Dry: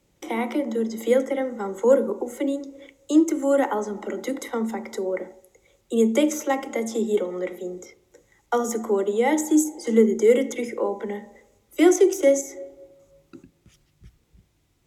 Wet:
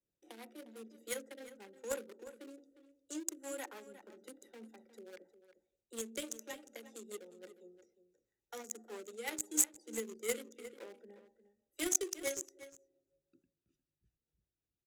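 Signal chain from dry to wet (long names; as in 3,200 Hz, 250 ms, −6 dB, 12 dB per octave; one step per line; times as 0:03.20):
adaptive Wiener filter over 41 samples
first-order pre-emphasis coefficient 0.97
in parallel at −5 dB: bit reduction 5 bits
on the sum: rotating-speaker cabinet horn 6 Hz
slap from a distant wall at 61 metres, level −13 dB
level +1 dB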